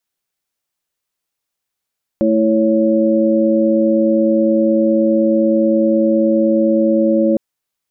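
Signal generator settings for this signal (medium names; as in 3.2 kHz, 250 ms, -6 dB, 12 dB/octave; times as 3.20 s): chord A3/E4/C#5 sine, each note -15 dBFS 5.16 s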